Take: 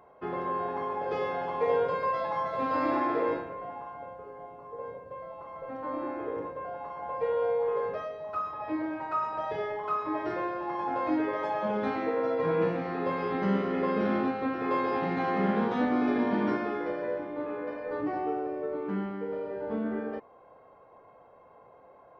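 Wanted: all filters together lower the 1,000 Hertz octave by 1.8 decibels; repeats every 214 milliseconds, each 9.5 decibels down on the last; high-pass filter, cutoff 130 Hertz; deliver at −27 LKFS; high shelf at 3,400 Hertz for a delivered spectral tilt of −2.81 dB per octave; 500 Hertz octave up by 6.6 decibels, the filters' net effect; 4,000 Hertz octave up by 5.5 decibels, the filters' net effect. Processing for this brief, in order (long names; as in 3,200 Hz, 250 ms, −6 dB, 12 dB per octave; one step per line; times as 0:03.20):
high-pass filter 130 Hz
parametric band 500 Hz +8.5 dB
parametric band 1,000 Hz −5.5 dB
high-shelf EQ 3,400 Hz +3.5 dB
parametric band 4,000 Hz +5 dB
repeating echo 214 ms, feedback 33%, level −9.5 dB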